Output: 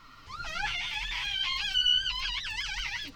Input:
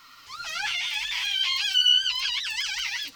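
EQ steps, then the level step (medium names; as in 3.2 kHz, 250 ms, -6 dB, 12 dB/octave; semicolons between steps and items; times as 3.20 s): tilt EQ -3.5 dB/octave; 0.0 dB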